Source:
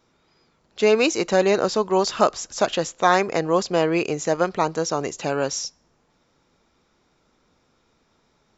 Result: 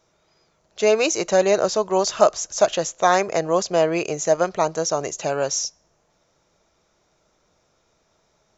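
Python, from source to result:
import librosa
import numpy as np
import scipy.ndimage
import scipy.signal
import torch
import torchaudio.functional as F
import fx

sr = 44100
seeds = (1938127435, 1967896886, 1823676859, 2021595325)

y = fx.graphic_eq_31(x, sr, hz=(250, 630, 6300), db=(-9, 8, 9))
y = F.gain(torch.from_numpy(y), -1.5).numpy()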